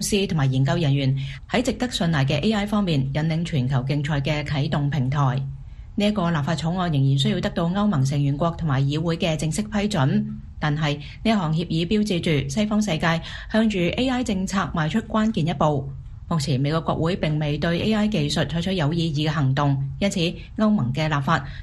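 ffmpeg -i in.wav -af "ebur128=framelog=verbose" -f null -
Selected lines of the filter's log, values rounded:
Integrated loudness:
  I:         -22.6 LUFS
  Threshold: -32.7 LUFS
Loudness range:
  LRA:         1.2 LU
  Threshold: -42.8 LUFS
  LRA low:   -23.4 LUFS
  LRA high:  -22.2 LUFS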